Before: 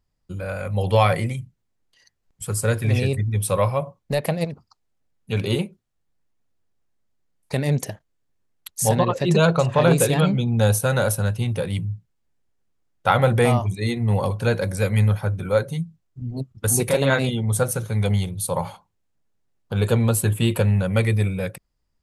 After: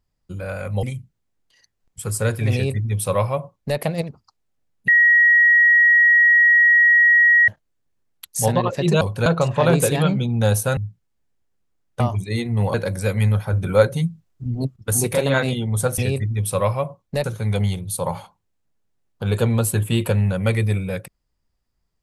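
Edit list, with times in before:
0.83–1.26 s: delete
2.95–4.21 s: copy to 17.74 s
5.31–7.91 s: bleep 1.9 kHz -10 dBFS
10.95–11.84 s: delete
13.07–13.51 s: delete
14.25–14.50 s: move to 9.44 s
15.29–16.52 s: gain +5 dB

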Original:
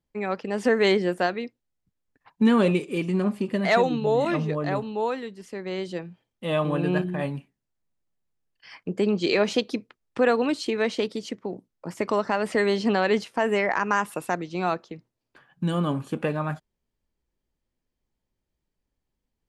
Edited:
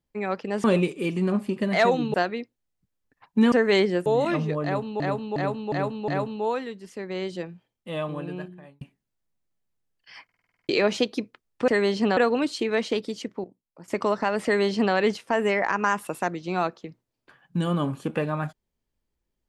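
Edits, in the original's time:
0.64–1.18 s: swap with 2.56–4.06 s
4.64–5.00 s: loop, 5 plays
5.86–7.37 s: fade out
8.80 s: stutter in place 0.05 s, 9 plays
11.51–11.95 s: gain -11.5 dB
12.52–13.01 s: copy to 10.24 s

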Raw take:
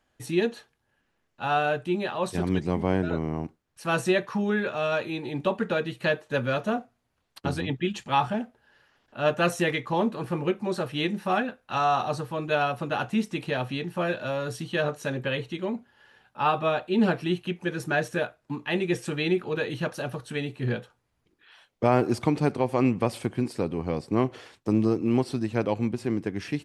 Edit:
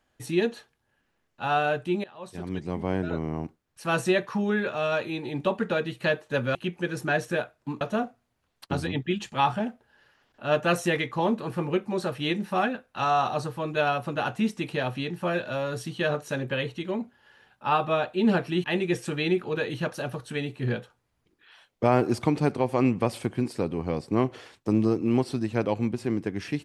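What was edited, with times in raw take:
2.04–3.92 s: fade in equal-power, from -21.5 dB
17.38–18.64 s: move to 6.55 s

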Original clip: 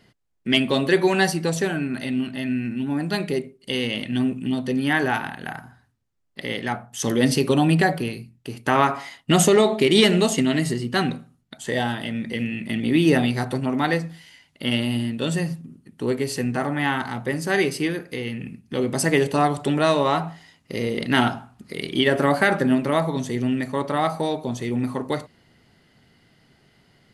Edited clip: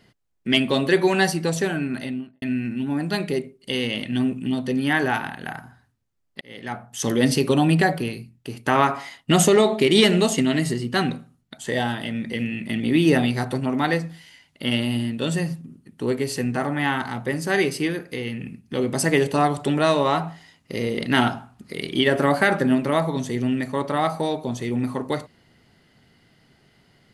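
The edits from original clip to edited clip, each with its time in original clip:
1.94–2.42 s: studio fade out
6.41–6.91 s: fade in

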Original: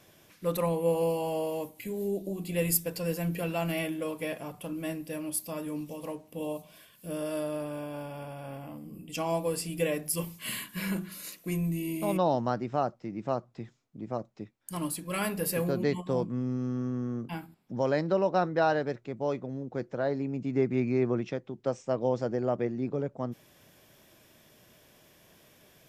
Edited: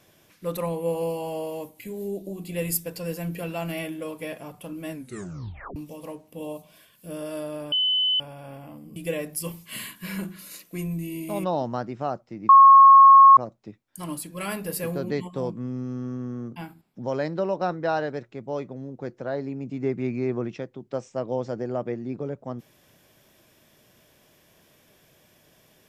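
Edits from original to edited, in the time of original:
4.92 s: tape stop 0.84 s
7.72–8.20 s: bleep 3.02 kHz -19.5 dBFS
8.96–9.69 s: delete
13.22–14.10 s: bleep 1.09 kHz -7.5 dBFS

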